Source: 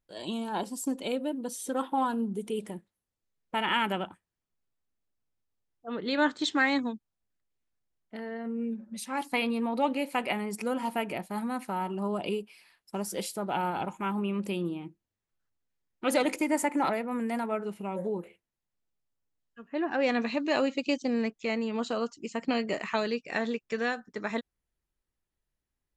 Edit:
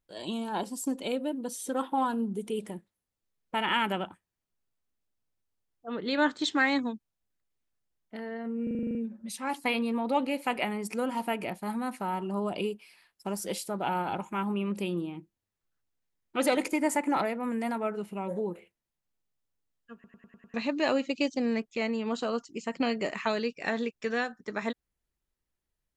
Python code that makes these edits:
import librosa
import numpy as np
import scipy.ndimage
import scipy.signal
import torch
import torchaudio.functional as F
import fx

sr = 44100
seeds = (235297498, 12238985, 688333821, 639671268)

y = fx.edit(x, sr, fx.stutter(start_s=8.63, slice_s=0.04, count=9),
    fx.stutter_over(start_s=19.62, slice_s=0.1, count=6), tone=tone)